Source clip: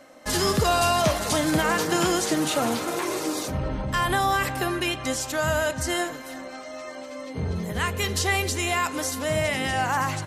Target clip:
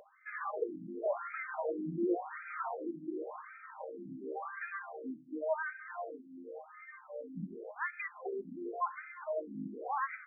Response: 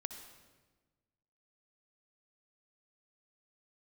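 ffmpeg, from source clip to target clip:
-af "aeval=exprs='val(0)+0.0178*sin(2*PI*460*n/s)':c=same,flanger=delay=5:depth=1.3:regen=56:speed=0.82:shape=sinusoidal,afftfilt=real='re*between(b*sr/1024,230*pow(1800/230,0.5+0.5*sin(2*PI*0.91*pts/sr))/1.41,230*pow(1800/230,0.5+0.5*sin(2*PI*0.91*pts/sr))*1.41)':imag='im*between(b*sr/1024,230*pow(1800/230,0.5+0.5*sin(2*PI*0.91*pts/sr))/1.41,230*pow(1800/230,0.5+0.5*sin(2*PI*0.91*pts/sr))*1.41)':win_size=1024:overlap=0.75,volume=0.708"

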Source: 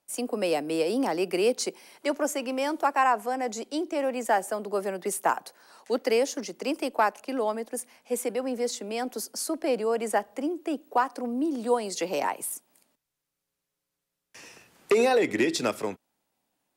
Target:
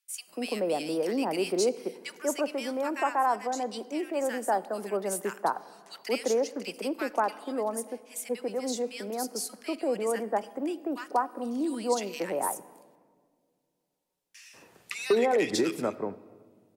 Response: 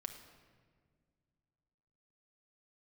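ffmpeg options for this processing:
-filter_complex "[0:a]acrossover=split=1600[s0][s1];[s0]adelay=190[s2];[s2][s1]amix=inputs=2:normalize=0,asplit=2[s3][s4];[1:a]atrim=start_sample=2205[s5];[s4][s5]afir=irnorm=-1:irlink=0,volume=0.631[s6];[s3][s6]amix=inputs=2:normalize=0,volume=0.562"

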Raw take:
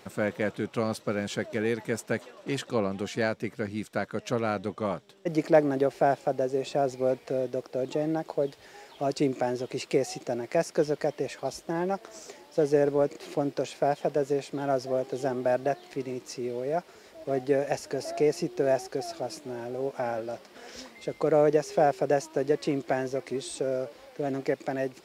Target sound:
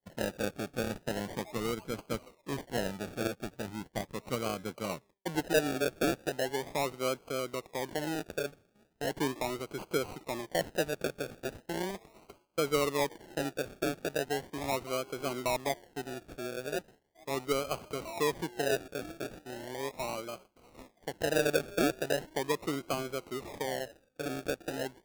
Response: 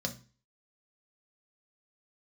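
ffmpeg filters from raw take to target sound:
-af "acrusher=samples=34:mix=1:aa=0.000001:lfo=1:lforange=20.4:lforate=0.38,agate=range=0.0224:threshold=0.0112:ratio=3:detection=peak,volume=0.501"

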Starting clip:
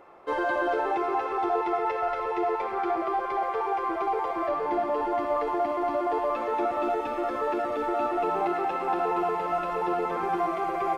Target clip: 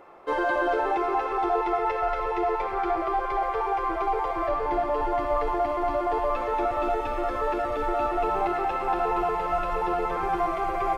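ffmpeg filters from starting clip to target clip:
-af "asubboost=boost=11.5:cutoff=63,volume=1.26"

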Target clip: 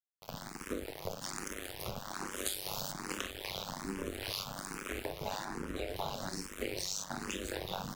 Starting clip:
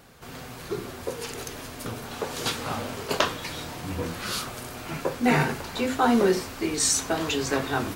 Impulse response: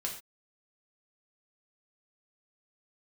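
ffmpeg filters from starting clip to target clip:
-filter_complex "[0:a]aecho=1:1:27|48:0.596|0.562,tremolo=f=100:d=0.857,asplit=3[s0][s1][s2];[s0]afade=t=out:st=2.45:d=0.02[s3];[s1]bass=f=250:g=-2,treble=f=4000:g=14,afade=t=in:st=2.45:d=0.02,afade=t=out:st=2.91:d=0.02[s4];[s2]afade=t=in:st=2.91:d=0.02[s5];[s3][s4][s5]amix=inputs=3:normalize=0,aeval=exprs='val(0)*sin(2*PI*92*n/s)':c=same,asettb=1/sr,asplit=3[s6][s7][s8];[s6]atrim=end=5.454[s9];[s7]atrim=start=5.45:end=5.96,asetpts=PTS-STARTPTS,afade=t=in:d=0.004:c=qsin,afade=t=out:st=0.506:d=0.004:c=qsin,tiltshelf=f=1400:g=7.5[s10];[s8]atrim=start=5.956[s11];[s9][s10]acrossfade=d=0.004:c1=hsin:c2=qsin[s12];[s12][s11]acrossfade=d=0.004:c1=qsin:c2=hsin,acrossover=split=250|3000[s13][s14][s15];[s14]acompressor=threshold=0.0158:ratio=3[s16];[s13][s16][s15]amix=inputs=3:normalize=0,afftfilt=real='re*lt(hypot(re,im),0.141)':imag='im*lt(hypot(re,im),0.141)':win_size=1024:overlap=0.75,aeval=exprs='sgn(val(0))*max(abs(val(0))-0.00668,0)':c=same,acompressor=threshold=0.00708:ratio=4,asplit=2[s17][s18];[s18]afreqshift=1.2[s19];[s17][s19]amix=inputs=2:normalize=1,volume=3.35"

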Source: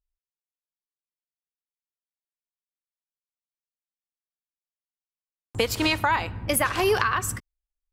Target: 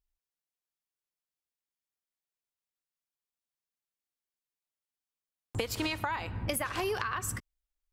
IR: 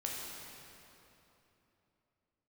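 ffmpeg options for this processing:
-af "acompressor=threshold=0.0316:ratio=6"

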